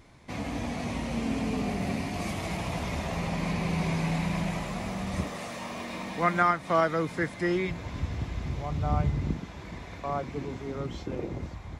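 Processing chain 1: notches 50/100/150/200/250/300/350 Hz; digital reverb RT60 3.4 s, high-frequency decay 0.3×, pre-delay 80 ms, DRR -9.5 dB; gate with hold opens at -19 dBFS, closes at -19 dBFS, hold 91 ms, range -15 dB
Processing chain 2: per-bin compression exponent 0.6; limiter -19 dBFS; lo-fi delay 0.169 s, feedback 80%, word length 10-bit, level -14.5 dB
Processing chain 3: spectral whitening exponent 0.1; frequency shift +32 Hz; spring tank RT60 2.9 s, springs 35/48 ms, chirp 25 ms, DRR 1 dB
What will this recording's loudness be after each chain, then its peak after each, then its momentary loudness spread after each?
-20.0, -28.5, -27.0 LUFS; -1.0, -16.0, -9.5 dBFS; 10, 2, 11 LU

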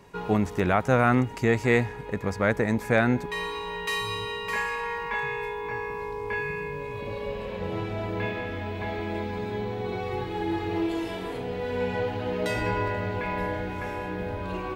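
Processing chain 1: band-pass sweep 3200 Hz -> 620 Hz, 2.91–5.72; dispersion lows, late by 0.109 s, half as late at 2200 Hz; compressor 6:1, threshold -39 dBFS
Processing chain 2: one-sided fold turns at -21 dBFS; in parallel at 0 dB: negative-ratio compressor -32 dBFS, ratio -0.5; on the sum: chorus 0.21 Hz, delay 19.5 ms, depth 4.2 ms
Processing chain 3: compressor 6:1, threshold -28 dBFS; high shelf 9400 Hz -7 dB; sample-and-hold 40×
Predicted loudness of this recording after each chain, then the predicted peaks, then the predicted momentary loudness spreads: -42.5, -28.5, -33.0 LUFS; -30.0, -14.0, -17.5 dBFS; 3, 3, 3 LU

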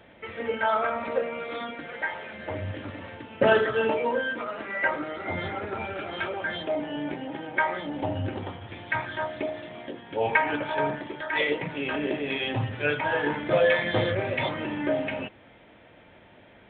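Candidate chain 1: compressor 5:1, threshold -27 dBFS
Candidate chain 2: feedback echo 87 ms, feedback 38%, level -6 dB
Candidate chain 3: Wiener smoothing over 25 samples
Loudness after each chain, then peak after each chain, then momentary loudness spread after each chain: -32.5, -27.0, -29.5 LUFS; -14.0, -5.5, -7.0 dBFS; 6, 12, 14 LU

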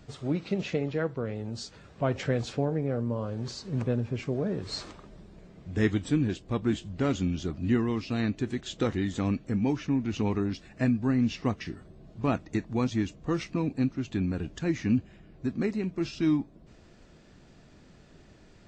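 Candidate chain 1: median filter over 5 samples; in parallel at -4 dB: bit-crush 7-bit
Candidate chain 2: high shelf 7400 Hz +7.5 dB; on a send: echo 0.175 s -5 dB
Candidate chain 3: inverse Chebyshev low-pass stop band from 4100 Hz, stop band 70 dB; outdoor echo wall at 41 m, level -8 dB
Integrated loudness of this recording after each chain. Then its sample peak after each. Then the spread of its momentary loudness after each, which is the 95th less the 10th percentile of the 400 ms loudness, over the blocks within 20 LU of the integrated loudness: -26.0, -29.0, -30.0 LUFS; -8.0, -11.0, -14.0 dBFS; 8, 8, 9 LU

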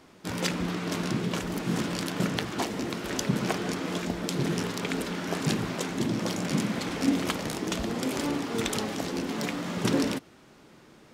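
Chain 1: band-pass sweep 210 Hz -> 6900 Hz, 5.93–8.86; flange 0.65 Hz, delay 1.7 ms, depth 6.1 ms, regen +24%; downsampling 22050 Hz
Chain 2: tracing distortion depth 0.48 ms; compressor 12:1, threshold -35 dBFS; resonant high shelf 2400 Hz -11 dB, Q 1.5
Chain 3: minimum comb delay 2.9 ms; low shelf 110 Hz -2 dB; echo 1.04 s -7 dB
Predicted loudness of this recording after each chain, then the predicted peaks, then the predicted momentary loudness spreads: -40.5, -39.5, -31.5 LUFS; -21.0, -22.5, -9.5 dBFS; 11, 2, 4 LU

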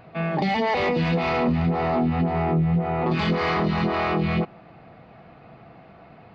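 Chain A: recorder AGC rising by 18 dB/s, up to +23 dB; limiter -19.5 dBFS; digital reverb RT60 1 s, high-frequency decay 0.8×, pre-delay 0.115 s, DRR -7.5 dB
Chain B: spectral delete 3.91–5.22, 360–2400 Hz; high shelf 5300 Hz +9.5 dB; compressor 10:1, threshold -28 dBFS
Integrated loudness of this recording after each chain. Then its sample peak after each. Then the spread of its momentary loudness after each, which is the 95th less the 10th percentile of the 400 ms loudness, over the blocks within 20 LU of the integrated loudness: -20.0, -31.5 LUFS; -6.5, -21.0 dBFS; 7, 17 LU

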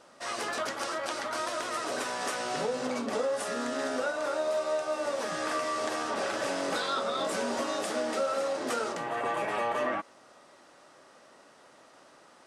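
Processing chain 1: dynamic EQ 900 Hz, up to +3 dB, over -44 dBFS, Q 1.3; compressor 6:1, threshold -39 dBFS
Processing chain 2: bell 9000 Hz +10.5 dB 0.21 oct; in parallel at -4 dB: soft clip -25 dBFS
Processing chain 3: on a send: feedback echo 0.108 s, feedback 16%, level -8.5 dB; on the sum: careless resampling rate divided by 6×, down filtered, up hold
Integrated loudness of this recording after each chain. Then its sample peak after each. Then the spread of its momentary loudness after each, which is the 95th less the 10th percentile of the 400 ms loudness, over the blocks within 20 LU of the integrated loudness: -41.0, -27.5, -31.0 LUFS; -27.0, -15.0, -18.5 dBFS; 15, 2, 4 LU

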